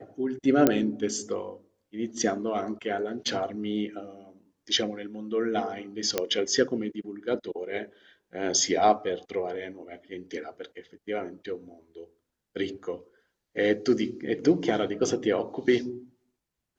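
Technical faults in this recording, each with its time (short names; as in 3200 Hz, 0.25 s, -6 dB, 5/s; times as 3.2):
0.67 pop -6 dBFS
3.28 gap 3.3 ms
6.18 pop -9 dBFS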